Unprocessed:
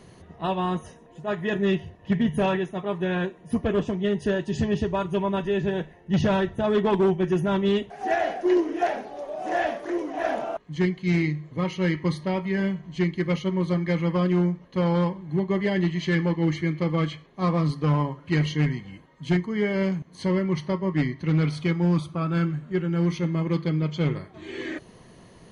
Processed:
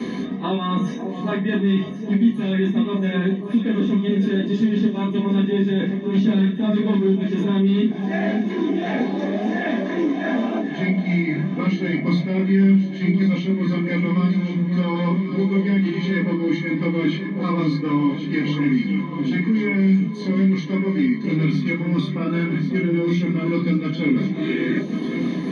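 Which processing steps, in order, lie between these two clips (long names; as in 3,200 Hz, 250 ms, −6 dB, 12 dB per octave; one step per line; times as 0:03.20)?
octave-band graphic EQ 125/250/1,000/2,000/4,000 Hz −12/+12/+7/+11/+11 dB
reversed playback
downward compressor 6 to 1, threshold −27 dBFS, peak gain reduction 15.5 dB
reversed playback
multi-voice chorus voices 6, 0.33 Hz, delay 29 ms, depth 3.2 ms
delay that swaps between a low-pass and a high-pass 544 ms, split 910 Hz, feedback 75%, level −9 dB
convolution reverb RT60 0.15 s, pre-delay 3 ms, DRR −2.5 dB
multiband upward and downward compressor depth 70%
level −7.5 dB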